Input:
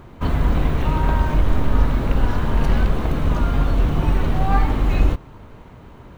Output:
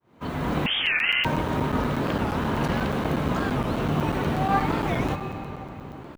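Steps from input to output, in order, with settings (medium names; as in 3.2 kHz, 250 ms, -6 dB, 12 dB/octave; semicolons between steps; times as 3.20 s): fade-in on the opening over 0.51 s; high-pass 150 Hz 12 dB/octave; reverberation RT60 4.0 s, pre-delay 97 ms, DRR 7.5 dB; 0.66–1.25 s: frequency inversion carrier 3 kHz; crackling interface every 0.12 s, samples 256, zero, from 0.88 s; warped record 45 rpm, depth 250 cents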